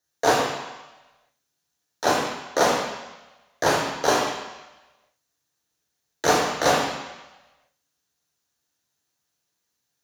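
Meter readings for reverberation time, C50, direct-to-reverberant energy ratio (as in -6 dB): 1.1 s, 2.0 dB, -2.5 dB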